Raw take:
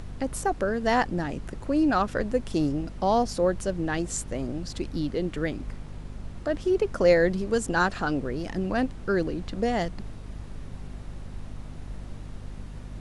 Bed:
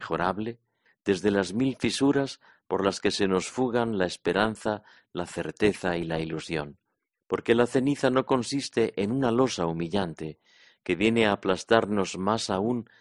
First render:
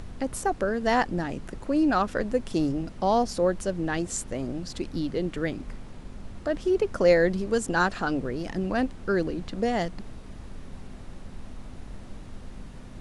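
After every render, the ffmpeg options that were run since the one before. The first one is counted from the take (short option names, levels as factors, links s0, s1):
-af "bandreject=f=50:t=h:w=4,bandreject=f=100:t=h:w=4,bandreject=f=150:t=h:w=4"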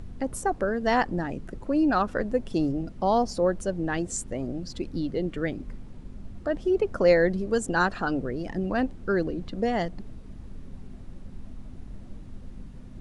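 -af "afftdn=nr=9:nf=-42"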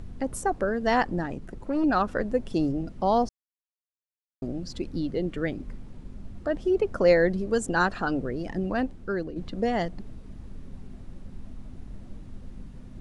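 -filter_complex "[0:a]asettb=1/sr,asplit=3[s0][s1][s2];[s0]atrim=end=1.264[s3];[s1]atrim=start=1.26:end=1.84,asetpts=PTS-STARTPTS,afade=t=in:d=0.004:c=qsin,afade=t=out:st=0.576:d=0.004:c=qsin,aeval=exprs='(tanh(11.2*val(0)+0.45)-tanh(0.45))/11.2':c=same[s4];[s2]atrim=start=1.836[s5];[s3][s4]acrossfade=d=0.004:c1=hsin:c2=qsin[s6];[s6][s5]acrossfade=d=0.004:c1=qsin:c2=hsin,asplit=4[s7][s8][s9][s10];[s7]atrim=end=3.29,asetpts=PTS-STARTPTS,afade=t=out:st=3.286:d=0.004:c=hsin[s11];[s8]atrim=start=3.29:end=4.42,asetpts=PTS-STARTPTS,volume=0[s12];[s9]atrim=start=4.42:end=9.36,asetpts=PTS-STARTPTS,afade=t=in:d=0.004:c=hsin,afade=t=out:st=4.19:d=0.75:silence=0.446684[s13];[s10]atrim=start=9.36,asetpts=PTS-STARTPTS,afade=t=in:d=0.004:c=hsin:silence=0.446684[s14];[s11][s12][s13][s14]concat=n=4:v=0:a=1"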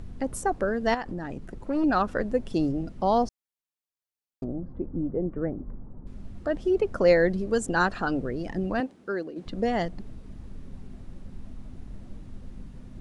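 -filter_complex "[0:a]asettb=1/sr,asplit=3[s0][s1][s2];[s0]atrim=end=0.944[s3];[s1]atrim=start=0.94:end=1.52,asetpts=PTS-STARTPTS,afade=t=in:d=0.004:c=qsin,afade=t=out:st=0.576:d=0.004:c=qsin,acompressor=threshold=0.0355:ratio=5:attack=3.2:release=140:knee=1:detection=peak[s4];[s2]atrim=start=1.516[s5];[s3][s4]acrossfade=d=0.004:c1=hsin:c2=qsin[s6];[s6][s5]acrossfade=d=0.004:c1=qsin:c2=hsin,asettb=1/sr,asplit=3[s7][s8][s9];[s7]atrim=end=4.444[s10];[s8]atrim=start=4.44:end=6.07,asetpts=PTS-STARTPTS,afade=t=in:d=0.004:c=qsin,afade=t=out:st=1.626:d=0.004:c=qsin,lowpass=f=1200:w=0.5412,lowpass=f=1200:w=1.3066[s11];[s9]atrim=start=6.066[s12];[s10][s11]acrossfade=d=0.004:c1=hsin:c2=qsin[s13];[s13][s12]acrossfade=d=0.004:c1=qsin:c2=hsin,asettb=1/sr,asplit=3[s14][s15][s16];[s14]atrim=end=8.804[s17];[s15]atrim=start=8.8:end=9.46,asetpts=PTS-STARTPTS,afade=t=in:d=0.004:c=qsin,afade=t=out:st=0.656:d=0.004:c=qsin,highpass=250[s18];[s16]atrim=start=9.456[s19];[s17][s18]acrossfade=d=0.004:c1=hsin:c2=qsin[s20];[s20][s19]acrossfade=d=0.004:c1=qsin:c2=hsin"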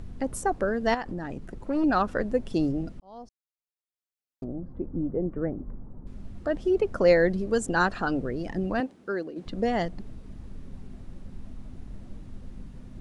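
-filter_complex "[0:a]asplit=2[s0][s1];[s0]atrim=end=3,asetpts=PTS-STARTPTS,afade=t=out:st=2.996:d=0.004:c=hsin[s2];[s1]atrim=start=3,asetpts=PTS-STARTPTS,afade=t=in:d=1.97[s3];[s2][s3]concat=n=2:v=0:a=1"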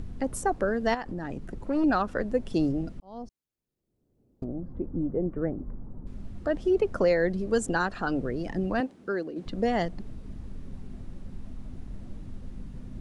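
-filter_complex "[0:a]acrossover=split=400[s0][s1];[s0]acompressor=mode=upward:threshold=0.0251:ratio=2.5[s2];[s2][s1]amix=inputs=2:normalize=0,alimiter=limit=0.2:level=0:latency=1:release=406"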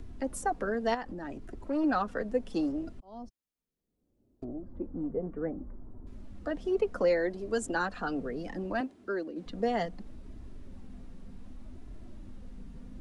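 -filter_complex "[0:a]acrossover=split=250|590|2200[s0][s1][s2][s3];[s0]asoftclip=type=tanh:threshold=0.015[s4];[s4][s1][s2][s3]amix=inputs=4:normalize=0,flanger=delay=2.9:depth=1.5:regen=-35:speed=0.67:shape=sinusoidal"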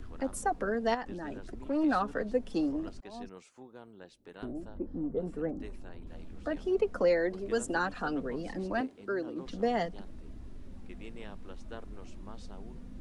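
-filter_complex "[1:a]volume=0.0562[s0];[0:a][s0]amix=inputs=2:normalize=0"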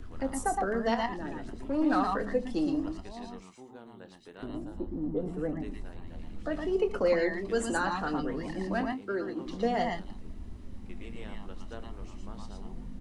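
-filter_complex "[0:a]asplit=2[s0][s1];[s1]adelay=26,volume=0.251[s2];[s0][s2]amix=inputs=2:normalize=0,asplit=2[s3][s4];[s4]aecho=0:1:72|115|116:0.112|0.562|0.562[s5];[s3][s5]amix=inputs=2:normalize=0"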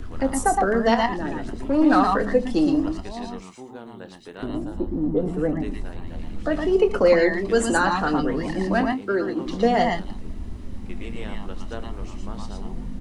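-af "volume=2.99"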